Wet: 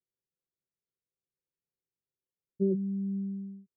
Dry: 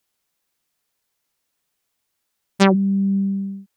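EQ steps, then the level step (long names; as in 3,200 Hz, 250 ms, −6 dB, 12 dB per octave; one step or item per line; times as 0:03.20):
Chebyshev low-pass with heavy ripple 540 Hz, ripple 9 dB
−8.0 dB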